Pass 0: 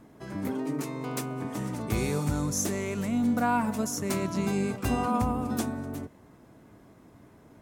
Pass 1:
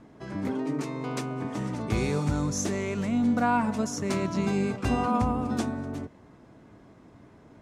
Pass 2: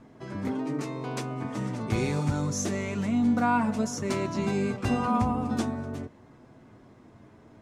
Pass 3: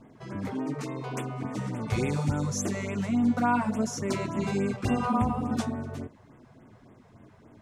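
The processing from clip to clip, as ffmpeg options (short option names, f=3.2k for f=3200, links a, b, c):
-af "lowpass=6.2k,volume=1.5dB"
-af "flanger=delay=8:depth=1.3:regen=-44:speed=0.46:shape=sinusoidal,volume=3.5dB"
-af "afftfilt=real='re*(1-between(b*sr/1024,250*pow(5300/250,0.5+0.5*sin(2*PI*3.5*pts/sr))/1.41,250*pow(5300/250,0.5+0.5*sin(2*PI*3.5*pts/sr))*1.41))':imag='im*(1-between(b*sr/1024,250*pow(5300/250,0.5+0.5*sin(2*PI*3.5*pts/sr))/1.41,250*pow(5300/250,0.5+0.5*sin(2*PI*3.5*pts/sr))*1.41))':win_size=1024:overlap=0.75"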